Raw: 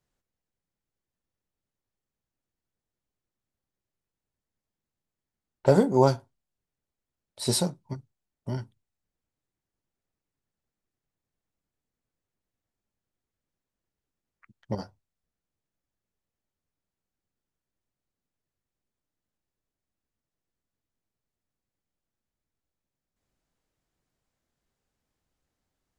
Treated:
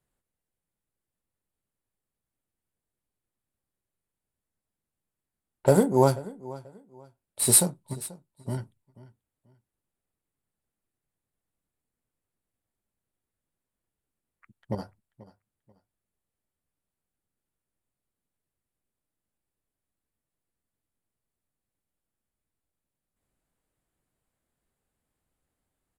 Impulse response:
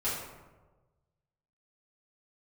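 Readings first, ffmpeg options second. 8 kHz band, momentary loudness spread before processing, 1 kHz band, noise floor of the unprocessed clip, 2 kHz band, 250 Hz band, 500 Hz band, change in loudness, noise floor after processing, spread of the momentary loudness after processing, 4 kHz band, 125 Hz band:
+12.0 dB, 20 LU, 0.0 dB, under -85 dBFS, +1.0 dB, 0.0 dB, 0.0 dB, +2.0 dB, under -85 dBFS, 22 LU, -1.0 dB, 0.0 dB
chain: -af "aexciter=amount=11.5:drive=6.6:freq=8.4k,aecho=1:1:486|972:0.112|0.0292,adynamicsmooth=sensitivity=8:basefreq=5.2k"

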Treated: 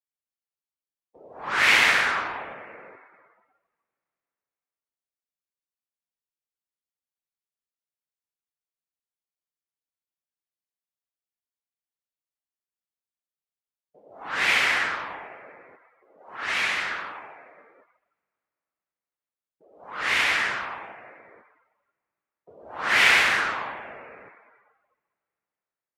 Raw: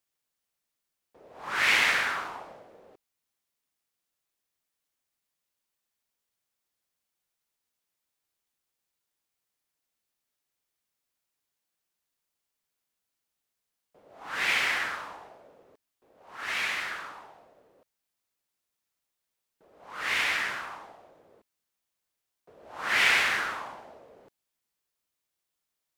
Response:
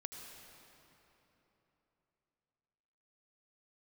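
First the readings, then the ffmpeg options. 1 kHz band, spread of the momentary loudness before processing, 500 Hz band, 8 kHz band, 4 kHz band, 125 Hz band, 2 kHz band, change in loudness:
+5.5 dB, 22 LU, +6.0 dB, +3.5 dB, +4.5 dB, +6.0 dB, +5.0 dB, +5.0 dB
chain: -filter_complex "[0:a]asplit=2[a][b];[1:a]atrim=start_sample=2205,highshelf=f=3.8k:g=-12[c];[b][c]afir=irnorm=-1:irlink=0,volume=-4dB[d];[a][d]amix=inputs=2:normalize=0,afftdn=nr=20:nf=-54,volume=3dB"

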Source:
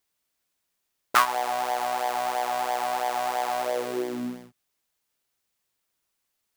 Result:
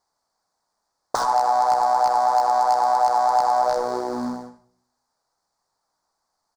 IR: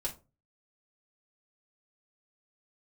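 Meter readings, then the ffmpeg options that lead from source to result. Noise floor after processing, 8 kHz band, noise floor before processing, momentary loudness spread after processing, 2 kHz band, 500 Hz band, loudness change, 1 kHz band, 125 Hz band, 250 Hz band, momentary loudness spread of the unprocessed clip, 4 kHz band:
-78 dBFS, 0.0 dB, -79 dBFS, 10 LU, -4.5 dB, +5.5 dB, +7.0 dB, +8.5 dB, n/a, +2.5 dB, 8 LU, -1.5 dB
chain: -filter_complex "[0:a]aeval=exprs='(mod(6.68*val(0)+1,2)-1)/6.68':c=same,acompressor=threshold=-29dB:ratio=4,acrusher=bits=3:mode=log:mix=0:aa=0.000001,firequalizer=gain_entry='entry(360,0);entry(830,14);entry(2800,-20);entry(4500,4);entry(13000,-16)':delay=0.05:min_phase=1,asplit=2[a][b];[1:a]atrim=start_sample=2205,asetrate=22932,aresample=44100,adelay=63[c];[b][c]afir=irnorm=-1:irlink=0,volume=-15dB[d];[a][d]amix=inputs=2:normalize=0,volume=2.5dB"

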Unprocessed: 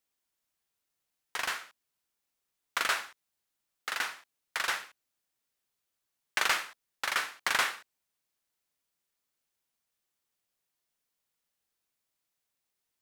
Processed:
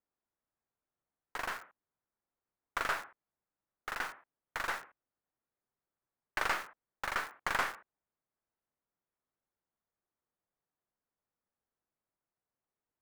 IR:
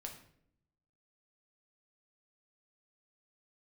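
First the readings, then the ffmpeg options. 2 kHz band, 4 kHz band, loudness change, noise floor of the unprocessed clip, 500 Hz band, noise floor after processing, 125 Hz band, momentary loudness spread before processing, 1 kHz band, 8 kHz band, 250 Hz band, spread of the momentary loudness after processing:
-5.0 dB, -10.5 dB, -5.5 dB, -84 dBFS, -0.5 dB, under -85 dBFS, n/a, 16 LU, -2.0 dB, -11.0 dB, +1.0 dB, 14 LU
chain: -filter_complex "[0:a]highshelf=f=2.7k:g=-10.5,acrossover=split=2000[a][b];[b]acrusher=bits=5:dc=4:mix=0:aa=0.000001[c];[a][c]amix=inputs=2:normalize=0"

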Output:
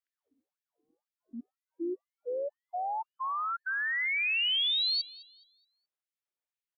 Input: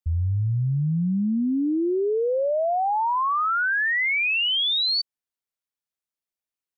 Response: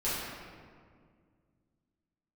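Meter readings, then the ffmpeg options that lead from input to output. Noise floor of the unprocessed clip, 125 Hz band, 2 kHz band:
under -85 dBFS, under -40 dB, -8.0 dB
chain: -filter_complex "[0:a]highshelf=f=3.4k:g=-10,acrossover=split=140|3000[a][b][c];[b]acompressor=threshold=-33dB:ratio=5[d];[a][d][c]amix=inputs=3:normalize=0,asplit=2[e][f];[f]adelay=211,lowpass=f=3.9k:p=1,volume=-17dB,asplit=2[g][h];[h]adelay=211,lowpass=f=3.9k:p=1,volume=0.45,asplit=2[i][j];[j]adelay=211,lowpass=f=3.9k:p=1,volume=0.45,asplit=2[k][l];[l]adelay=211,lowpass=f=3.9k:p=1,volume=0.45[m];[e][g][i][k][m]amix=inputs=5:normalize=0,afftfilt=real='re*gte(b*sr/1024,240*pow(1800/240,0.5+0.5*sin(2*PI*2*pts/sr)))':imag='im*gte(b*sr/1024,240*pow(1800/240,0.5+0.5*sin(2*PI*2*pts/sr)))':win_size=1024:overlap=0.75"

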